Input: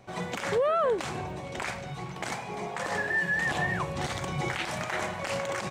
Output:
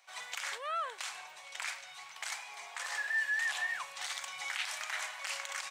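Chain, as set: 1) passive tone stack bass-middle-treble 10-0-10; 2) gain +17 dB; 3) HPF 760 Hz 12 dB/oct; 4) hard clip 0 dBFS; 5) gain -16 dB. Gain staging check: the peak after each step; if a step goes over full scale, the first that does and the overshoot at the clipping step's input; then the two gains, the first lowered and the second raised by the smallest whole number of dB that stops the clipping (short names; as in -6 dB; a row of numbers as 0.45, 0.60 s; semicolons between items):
-22.5, -5.5, -5.0, -5.0, -21.0 dBFS; no overload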